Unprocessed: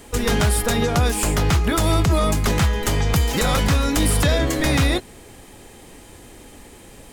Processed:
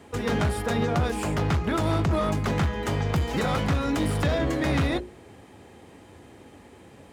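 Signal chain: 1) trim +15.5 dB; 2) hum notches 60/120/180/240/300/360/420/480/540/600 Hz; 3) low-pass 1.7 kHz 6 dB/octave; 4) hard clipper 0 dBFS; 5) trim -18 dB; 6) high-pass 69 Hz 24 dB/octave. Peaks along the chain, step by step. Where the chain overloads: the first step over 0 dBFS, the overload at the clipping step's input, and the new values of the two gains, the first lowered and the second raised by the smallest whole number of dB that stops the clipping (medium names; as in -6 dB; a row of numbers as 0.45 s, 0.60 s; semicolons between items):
+6.0 dBFS, +7.5 dBFS, +6.5 dBFS, 0.0 dBFS, -18.0 dBFS, -12.5 dBFS; step 1, 6.5 dB; step 1 +8.5 dB, step 5 -11 dB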